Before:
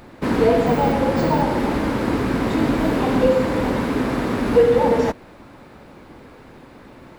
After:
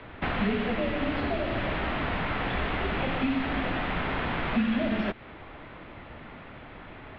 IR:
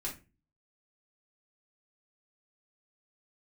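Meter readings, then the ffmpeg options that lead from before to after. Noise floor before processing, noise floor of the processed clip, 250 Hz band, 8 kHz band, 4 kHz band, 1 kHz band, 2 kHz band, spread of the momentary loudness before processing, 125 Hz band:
−45 dBFS, −46 dBFS, −9.5 dB, below −30 dB, −2.5 dB, −9.0 dB, −2.0 dB, 6 LU, −8.5 dB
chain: -filter_complex "[0:a]acrossover=split=580|2400[link_01][link_02][link_03];[link_01]acompressor=threshold=-29dB:ratio=4[link_04];[link_02]acompressor=threshold=-33dB:ratio=4[link_05];[link_03]acompressor=threshold=-40dB:ratio=4[link_06];[link_04][link_05][link_06]amix=inputs=3:normalize=0,highpass=frequency=280:width_type=q:width=0.5412,highpass=frequency=280:width_type=q:width=1.307,lowpass=frequency=3300:width_type=q:width=0.5176,lowpass=frequency=3300:width_type=q:width=0.7071,lowpass=frequency=3300:width_type=q:width=1.932,afreqshift=-250,highshelf=frequency=2300:gain=12"

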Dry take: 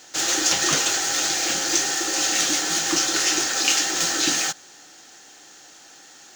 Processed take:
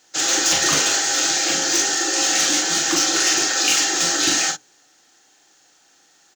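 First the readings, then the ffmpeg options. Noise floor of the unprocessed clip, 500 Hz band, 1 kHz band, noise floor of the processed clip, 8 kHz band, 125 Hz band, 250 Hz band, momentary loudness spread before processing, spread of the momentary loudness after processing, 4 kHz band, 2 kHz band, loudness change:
−48 dBFS, +3.5 dB, +3.0 dB, −57 dBFS, +3.0 dB, +2.0 dB, +3.0 dB, 3 LU, 2 LU, +3.0 dB, +3.0 dB, +3.0 dB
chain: -filter_complex "[0:a]asplit=2[link_01][link_02];[link_02]aeval=exprs='(mod(4.47*val(0)+1,2)-1)/4.47':channel_layout=same,volume=-5.5dB[link_03];[link_01][link_03]amix=inputs=2:normalize=0,bandreject=frequency=62.16:width_type=h:width=4,bandreject=frequency=124.32:width_type=h:width=4,bandreject=frequency=186.48:width_type=h:width=4,bandreject=frequency=248.64:width_type=h:width=4,bandreject=frequency=310.8:width_type=h:width=4,bandreject=frequency=372.96:width_type=h:width=4,bandreject=frequency=435.12:width_type=h:width=4,bandreject=frequency=497.28:width_type=h:width=4,bandreject=frequency=559.44:width_type=h:width=4,bandreject=frequency=621.6:width_type=h:width=4,afftdn=noise_reduction=13:noise_floor=-32,asplit=2[link_04][link_05];[link_05]adelay=41,volume=-5dB[link_06];[link_04][link_06]amix=inputs=2:normalize=0,volume=-1dB"

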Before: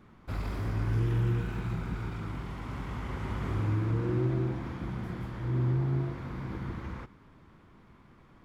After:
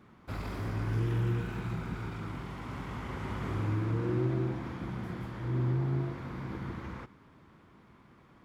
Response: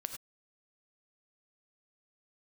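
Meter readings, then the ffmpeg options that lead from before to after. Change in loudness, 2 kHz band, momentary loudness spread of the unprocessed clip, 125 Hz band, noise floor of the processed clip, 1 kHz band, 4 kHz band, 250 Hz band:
−2.0 dB, 0.0 dB, 10 LU, −2.5 dB, −59 dBFS, 0.0 dB, 0.0 dB, −1.0 dB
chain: -af "highpass=frequency=98:poles=1"

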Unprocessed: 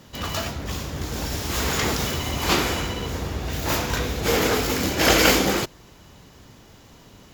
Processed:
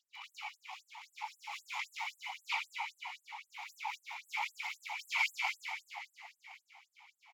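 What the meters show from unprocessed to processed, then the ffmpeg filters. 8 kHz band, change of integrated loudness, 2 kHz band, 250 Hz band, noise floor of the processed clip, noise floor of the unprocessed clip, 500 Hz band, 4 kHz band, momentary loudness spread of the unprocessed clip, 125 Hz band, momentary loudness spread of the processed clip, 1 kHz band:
−26.0 dB, −17.0 dB, −12.0 dB, below −40 dB, −81 dBFS, −50 dBFS, below −40 dB, −18.5 dB, 12 LU, below −40 dB, 17 LU, −14.5 dB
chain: -filter_complex "[0:a]asplit=3[link_01][link_02][link_03];[link_01]bandpass=frequency=300:width_type=q:width=8,volume=0dB[link_04];[link_02]bandpass=frequency=870:width_type=q:width=8,volume=-6dB[link_05];[link_03]bandpass=frequency=2240:width_type=q:width=8,volume=-9dB[link_06];[link_04][link_05][link_06]amix=inputs=3:normalize=0,asplit=2[link_07][link_08];[link_08]asplit=7[link_09][link_10][link_11][link_12][link_13][link_14][link_15];[link_09]adelay=191,afreqshift=-34,volume=-7dB[link_16];[link_10]adelay=382,afreqshift=-68,volume=-12dB[link_17];[link_11]adelay=573,afreqshift=-102,volume=-17.1dB[link_18];[link_12]adelay=764,afreqshift=-136,volume=-22.1dB[link_19];[link_13]adelay=955,afreqshift=-170,volume=-27.1dB[link_20];[link_14]adelay=1146,afreqshift=-204,volume=-32.2dB[link_21];[link_15]adelay=1337,afreqshift=-238,volume=-37.2dB[link_22];[link_16][link_17][link_18][link_19][link_20][link_21][link_22]amix=inputs=7:normalize=0[link_23];[link_07][link_23]amix=inputs=2:normalize=0,aphaser=in_gain=1:out_gain=1:delay=3:decay=0.34:speed=0.83:type=sinusoidal,asplit=2[link_24][link_25];[link_25]aecho=0:1:628|1256|1884|2512:0.119|0.0594|0.0297|0.0149[link_26];[link_24][link_26]amix=inputs=2:normalize=0,afftfilt=real='re*gte(b*sr/1024,670*pow(7800/670,0.5+0.5*sin(2*PI*3.8*pts/sr)))':imag='im*gte(b*sr/1024,670*pow(7800/670,0.5+0.5*sin(2*PI*3.8*pts/sr)))':win_size=1024:overlap=0.75,volume=4.5dB"

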